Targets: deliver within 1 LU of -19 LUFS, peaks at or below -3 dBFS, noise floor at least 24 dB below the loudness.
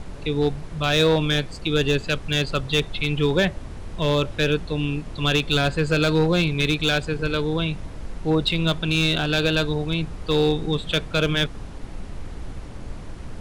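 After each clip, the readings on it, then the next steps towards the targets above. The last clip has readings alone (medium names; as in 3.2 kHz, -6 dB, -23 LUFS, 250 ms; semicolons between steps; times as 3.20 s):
clipped samples 0.7%; clipping level -12.0 dBFS; noise floor -37 dBFS; noise floor target -47 dBFS; loudness -22.5 LUFS; peak level -12.0 dBFS; loudness target -19.0 LUFS
-> clip repair -12 dBFS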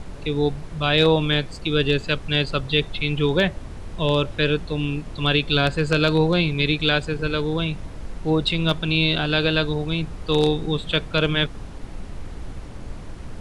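clipped samples 0.0%; noise floor -37 dBFS; noise floor target -46 dBFS
-> noise print and reduce 9 dB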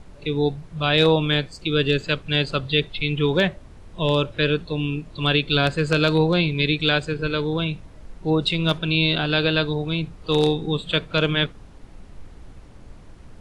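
noise floor -45 dBFS; noise floor target -46 dBFS
-> noise print and reduce 6 dB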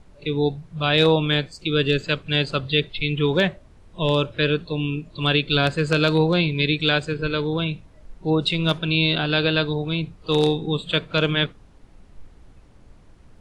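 noise floor -50 dBFS; loudness -21.5 LUFS; peak level -3.0 dBFS; loudness target -19.0 LUFS
-> trim +2.5 dB; peak limiter -3 dBFS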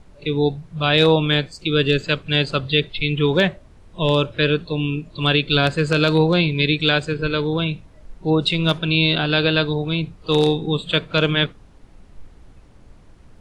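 loudness -19.5 LUFS; peak level -3.0 dBFS; noise floor -48 dBFS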